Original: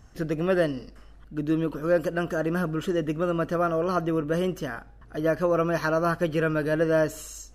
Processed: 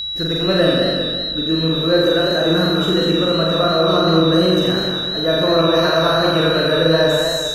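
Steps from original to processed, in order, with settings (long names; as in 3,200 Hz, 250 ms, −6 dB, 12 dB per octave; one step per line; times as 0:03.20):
flutter between parallel walls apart 7.4 metres, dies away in 1.3 s
steady tone 3,900 Hz −26 dBFS
feedback echo with a swinging delay time 197 ms, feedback 42%, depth 106 cents, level −5 dB
level +3.5 dB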